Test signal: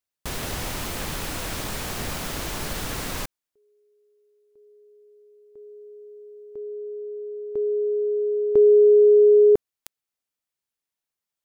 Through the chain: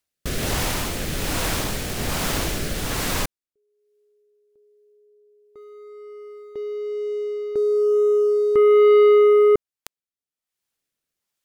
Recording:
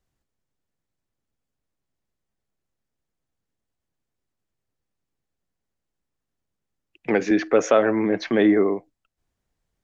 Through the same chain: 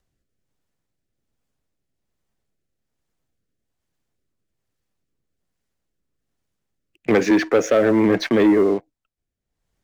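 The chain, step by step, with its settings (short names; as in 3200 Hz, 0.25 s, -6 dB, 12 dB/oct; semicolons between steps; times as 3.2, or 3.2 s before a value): rotary speaker horn 1.2 Hz; sample leveller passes 2; upward compressor 1.5:1, threshold -52 dBFS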